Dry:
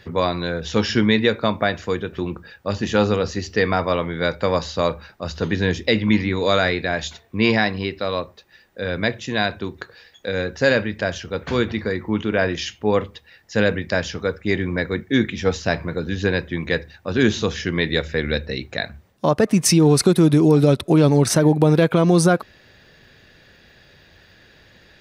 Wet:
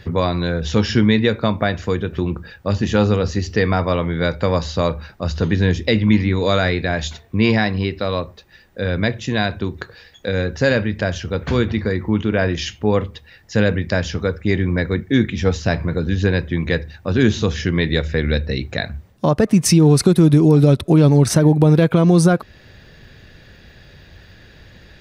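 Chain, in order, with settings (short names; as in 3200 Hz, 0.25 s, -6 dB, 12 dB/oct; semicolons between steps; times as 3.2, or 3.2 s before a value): low shelf 170 Hz +11 dB; in parallel at -0.5 dB: compressor, threshold -22 dBFS, peak gain reduction 14.5 dB; on the sum: gain -3 dB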